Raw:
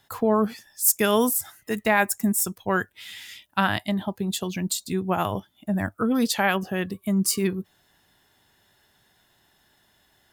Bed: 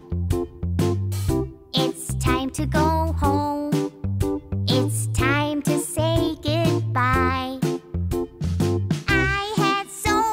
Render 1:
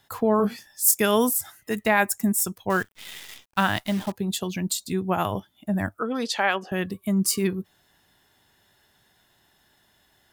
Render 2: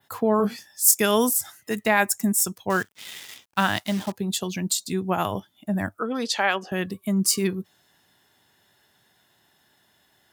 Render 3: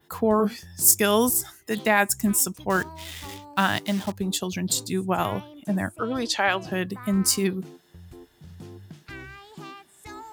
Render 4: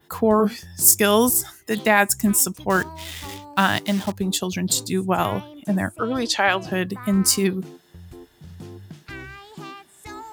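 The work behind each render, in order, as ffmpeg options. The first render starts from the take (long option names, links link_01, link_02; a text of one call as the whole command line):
ffmpeg -i in.wav -filter_complex "[0:a]asettb=1/sr,asplit=3[link_01][link_02][link_03];[link_01]atrim=end=0.374[link_04];[link_02]atrim=start=0.37:end=1,asetpts=PTS-STARTPTS,afade=type=in:duration=0.004:curve=qsin,afade=type=out:start_time=0.626:duration=0.004:curve=qsin,asplit=2[link_05][link_06];[link_06]adelay=25,volume=-6dB[link_07];[link_05][link_07]amix=inputs=2:normalize=0,atrim=end_sample=27783[link_08];[link_03]atrim=start=0.996[link_09];[link_04][link_08]acrossfade=duration=0.004:curve1=hsin:curve2=qsin[link_10];[link_10][link_09]acrossfade=duration=0.004:curve1=qsin:curve2=hsin,asettb=1/sr,asplit=3[link_11][link_12][link_13];[link_11]atrim=end=2.704[link_14];[link_12]atrim=start=2.7:end=4.12,asetpts=PTS-STARTPTS,afade=type=in:duration=0.004:curve=qsin,afade=type=out:start_time=1.416:duration=0.004:curve=qsin,acrusher=bits=7:dc=4:mix=0:aa=0.000001[link_15];[link_13]atrim=start=4.116[link_16];[link_14][link_15]acrossfade=duration=0.004:curve1=hsin:curve2=qsin[link_17];[link_17][link_16]acrossfade=duration=0.004:curve1=qsin:curve2=hsin,asettb=1/sr,asplit=3[link_18][link_19][link_20];[link_18]atrim=end=5.994[link_21];[link_19]atrim=start=5.99:end=6.72,asetpts=PTS-STARTPTS,afade=type=in:duration=0.004:curve=qsin,afade=type=out:start_time=0.726:duration=0.004:curve=qsin,highpass=360,lowpass=6300[link_22];[link_20]atrim=start=6.716[link_23];[link_21][link_22]acrossfade=duration=0.004:curve1=hsin:curve2=qsin[link_24];[link_24][link_23]acrossfade=duration=0.004:curve1=qsin:curve2=hsin" out.wav
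ffmpeg -i in.wav -af "adynamicequalizer=threshold=0.01:dfrequency=6000:dqfactor=0.91:tfrequency=6000:tqfactor=0.91:attack=5:release=100:ratio=0.375:range=2.5:mode=boostabove:tftype=bell,highpass=97" out.wav
ffmpeg -i in.wav -i bed.wav -filter_complex "[1:a]volume=-21dB[link_01];[0:a][link_01]amix=inputs=2:normalize=0" out.wav
ffmpeg -i in.wav -af "volume=3.5dB,alimiter=limit=-1dB:level=0:latency=1" out.wav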